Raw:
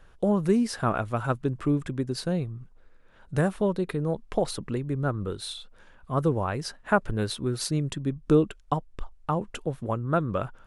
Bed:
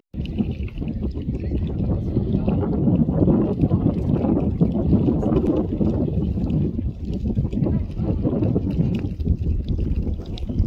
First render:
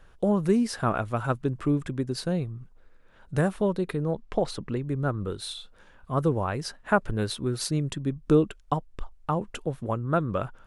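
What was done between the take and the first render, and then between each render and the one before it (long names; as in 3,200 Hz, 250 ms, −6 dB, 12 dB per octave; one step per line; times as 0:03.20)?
0:04.04–0:04.82: high-frequency loss of the air 52 metres
0:05.53–0:06.11: double-tracking delay 30 ms −10 dB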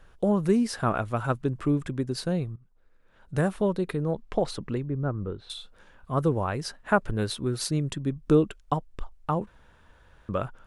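0:02.56–0:03.52: fade in linear, from −16 dB
0:04.86–0:05.50: head-to-tape spacing loss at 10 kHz 41 dB
0:09.47–0:10.29: fill with room tone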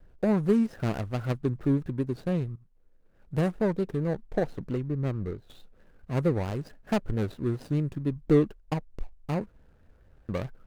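running median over 41 samples
pitch vibrato 4.5 Hz 94 cents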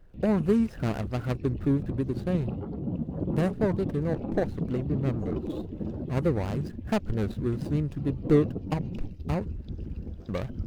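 mix in bed −13.5 dB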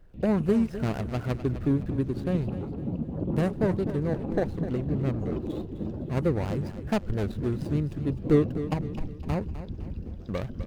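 repeating echo 255 ms, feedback 43%, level −12.5 dB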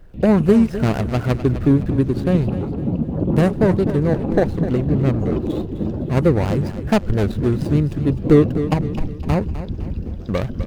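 level +10 dB
brickwall limiter −3 dBFS, peak gain reduction 2.5 dB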